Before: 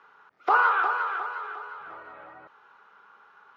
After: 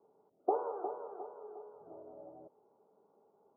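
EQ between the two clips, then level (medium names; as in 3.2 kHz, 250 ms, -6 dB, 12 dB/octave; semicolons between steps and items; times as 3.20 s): high-pass 240 Hz 6 dB/octave; steep low-pass 630 Hz 36 dB/octave; band-stop 500 Hz, Q 12; +3.5 dB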